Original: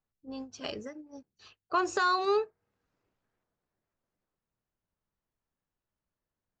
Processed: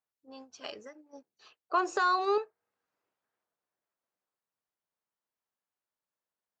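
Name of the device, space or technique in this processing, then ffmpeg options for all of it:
filter by subtraction: -filter_complex "[0:a]asplit=2[link_01][link_02];[link_02]lowpass=850,volume=-1[link_03];[link_01][link_03]amix=inputs=2:normalize=0,asettb=1/sr,asplit=3[link_04][link_05][link_06];[link_04]atrim=end=1.134[link_07];[link_05]atrim=start=1.13:end=2.38,asetpts=PTS-STARTPTS,afade=type=in:duration=0.004:curve=qsin,afade=type=out:start_time=1.246:duration=0.004:curve=qsin,equalizer=frequency=410:width=0.54:gain=6[link_08];[link_06]atrim=start=2.376[link_09];[link_07][link_08]acrossfade=duration=0.004:curve1=hsin:curve2=qsin[link_10];[link_10][link_09]acrossfade=duration=0.004:curve1=qsin:curve2=hsin,volume=-4dB"

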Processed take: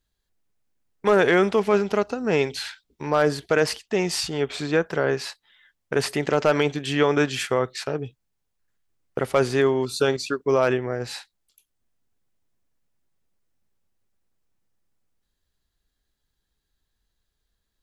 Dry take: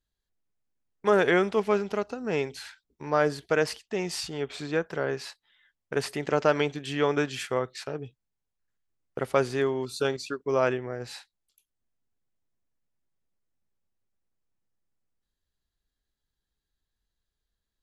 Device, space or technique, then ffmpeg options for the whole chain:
clipper into limiter: -filter_complex "[0:a]asoftclip=type=hard:threshold=-13dB,alimiter=limit=-16.5dB:level=0:latency=1:release=24,asettb=1/sr,asplit=3[link_01][link_02][link_03];[link_01]atrim=end=2.414[link_04];[link_02]atrim=start=2.41:end=3.07,asetpts=PTS-STARTPTS,afade=type=in:duration=0.004:curve=qsin,afade=type=out:start_time=0.656:duration=0.004:curve=qsin,equalizer=frequency=3500:width_type=o:width=1.1:gain=5[link_05];[link_03]atrim=start=3.066[link_06];[link_04][link_05]acrossfade=duration=0.004:curve1=hsin:curve2=qsin[link_07];[link_07][link_06]acrossfade=duration=0.004:curve1=qsin:curve2=hsin,volume=7dB"

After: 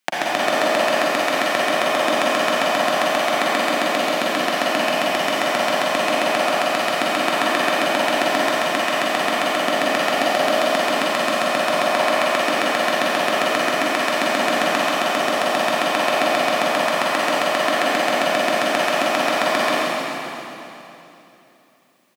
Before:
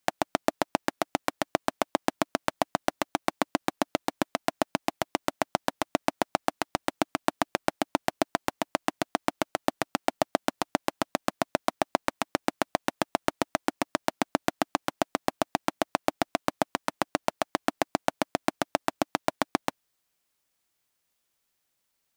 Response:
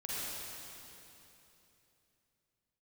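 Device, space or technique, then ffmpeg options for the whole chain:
PA in a hall: -filter_complex "[0:a]highpass=frequency=160:width=0.5412,highpass=frequency=160:width=1.3066,equalizer=frequency=2400:width_type=o:width=1.7:gain=7,aecho=1:1:135:0.398[link_01];[1:a]atrim=start_sample=2205[link_02];[link_01][link_02]afir=irnorm=-1:irlink=0,volume=5.5dB"

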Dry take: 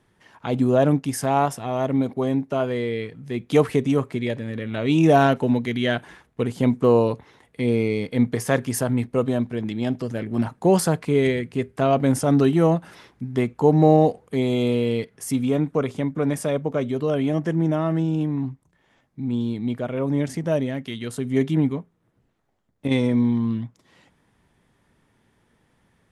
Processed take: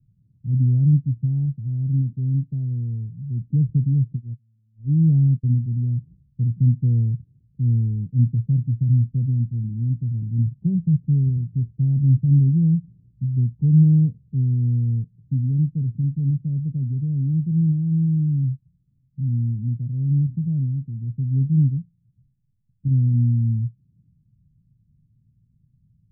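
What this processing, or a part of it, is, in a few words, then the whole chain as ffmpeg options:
the neighbour's flat through the wall: -filter_complex "[0:a]asplit=3[link_01][link_02][link_03];[link_01]afade=type=out:start_time=4.15:duration=0.02[link_04];[link_02]agate=range=-37dB:threshold=-22dB:ratio=16:detection=peak,afade=type=in:start_time=4.15:duration=0.02,afade=type=out:start_time=5.5:duration=0.02[link_05];[link_03]afade=type=in:start_time=5.5:duration=0.02[link_06];[link_04][link_05][link_06]amix=inputs=3:normalize=0,lowpass=frequency=160:width=0.5412,lowpass=frequency=160:width=1.3066,equalizer=frequency=130:width_type=o:width=0.91:gain=7,volume=4dB"

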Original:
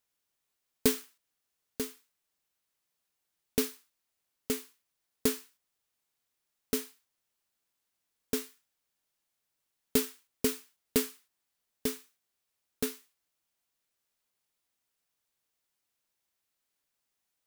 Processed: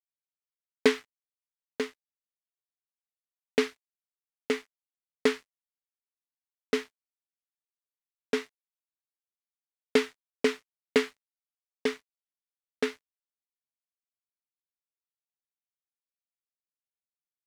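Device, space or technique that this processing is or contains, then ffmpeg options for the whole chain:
pocket radio on a weak battery: -af "highpass=350,lowpass=3100,aeval=exprs='sgn(val(0))*max(abs(val(0))-0.001,0)':channel_layout=same,equalizer=frequency=2000:width_type=o:width=0.33:gain=6,volume=8.5dB"

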